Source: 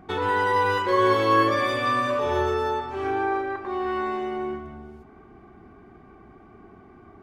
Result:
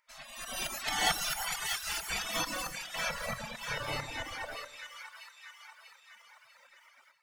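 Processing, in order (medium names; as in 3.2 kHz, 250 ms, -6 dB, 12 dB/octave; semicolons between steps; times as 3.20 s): high-order bell 1.6 kHz -8.5 dB 2.9 oct; de-hum 83.52 Hz, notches 4; tremolo saw up 4.5 Hz, depth 50%; spectral gate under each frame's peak -30 dB weak; two-band feedback delay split 1 kHz, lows 107 ms, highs 642 ms, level -5 dB; reverb removal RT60 1.9 s; level rider gain up to 15 dB; trim +4 dB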